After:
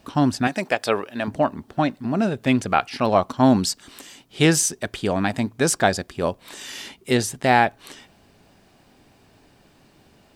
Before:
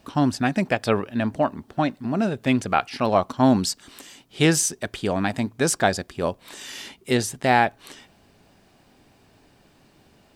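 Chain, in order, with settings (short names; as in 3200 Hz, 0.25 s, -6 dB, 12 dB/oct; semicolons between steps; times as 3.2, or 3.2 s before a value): 0.47–1.28 tone controls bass -13 dB, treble +3 dB; gain +1.5 dB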